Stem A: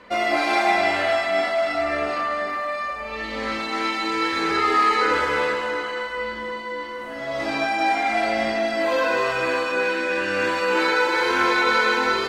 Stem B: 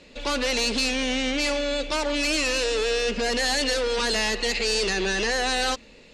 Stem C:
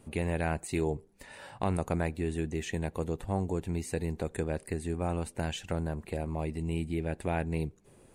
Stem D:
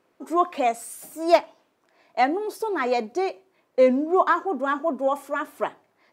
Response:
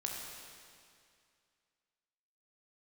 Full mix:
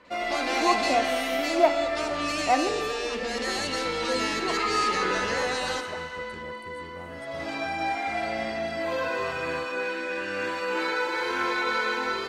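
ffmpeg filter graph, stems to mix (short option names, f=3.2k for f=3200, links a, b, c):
-filter_complex "[0:a]volume=-7.5dB[a];[1:a]highpass=52,adelay=50,volume=-11dB,asplit=2[b][c];[c]volume=-4dB[d];[2:a]adelay=1950,volume=-13.5dB[e];[3:a]equalizer=f=5.2k:w=0.73:g=-14,adelay=300,volume=-4.5dB,afade=t=out:st=2.64:d=0.33:silence=0.237137,asplit=2[f][g];[g]volume=-7dB[h];[4:a]atrim=start_sample=2205[i];[d][h]amix=inputs=2:normalize=0[j];[j][i]afir=irnorm=-1:irlink=0[k];[a][b][e][f][k]amix=inputs=5:normalize=0"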